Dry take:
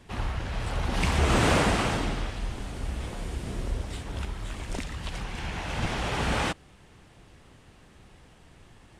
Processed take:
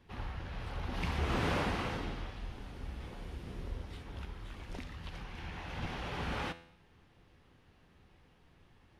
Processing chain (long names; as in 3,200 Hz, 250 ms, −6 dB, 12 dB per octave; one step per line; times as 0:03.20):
parametric band 8,000 Hz −13.5 dB 0.67 octaves
notch filter 640 Hz, Q 12
tuned comb filter 84 Hz, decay 0.65 s, harmonics all, mix 60%
level −3.5 dB